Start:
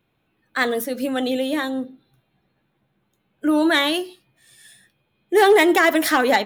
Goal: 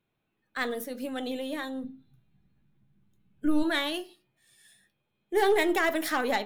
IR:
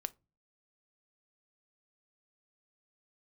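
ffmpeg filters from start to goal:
-filter_complex "[0:a]aeval=exprs='0.447*(cos(1*acos(clip(val(0)/0.447,-1,1)))-cos(1*PI/2))+0.0501*(cos(2*acos(clip(val(0)/0.447,-1,1)))-cos(2*PI/2))':c=same[s0];[1:a]atrim=start_sample=2205[s1];[s0][s1]afir=irnorm=-1:irlink=0,asplit=3[s2][s3][s4];[s2]afade=t=out:st=1.83:d=0.02[s5];[s3]asubboost=boost=10.5:cutoff=190,afade=t=in:st=1.83:d=0.02,afade=t=out:st=3.62:d=0.02[s6];[s4]afade=t=in:st=3.62:d=0.02[s7];[s5][s6][s7]amix=inputs=3:normalize=0,volume=0.355"

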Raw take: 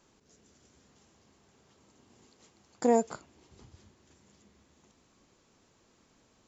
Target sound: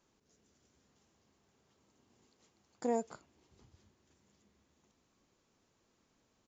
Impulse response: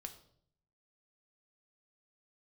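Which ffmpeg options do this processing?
-af "aresample=16000,aresample=44100,volume=0.355"

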